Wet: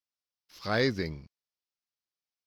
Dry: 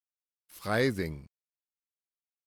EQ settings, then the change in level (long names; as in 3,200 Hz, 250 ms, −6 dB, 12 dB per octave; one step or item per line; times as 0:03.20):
high shelf with overshoot 6,900 Hz −10 dB, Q 3
0.0 dB